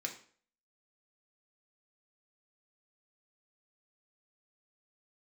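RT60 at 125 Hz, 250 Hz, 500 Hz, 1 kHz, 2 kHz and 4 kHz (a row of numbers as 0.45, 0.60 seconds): 0.45, 0.45, 0.50, 0.45, 0.45, 0.40 seconds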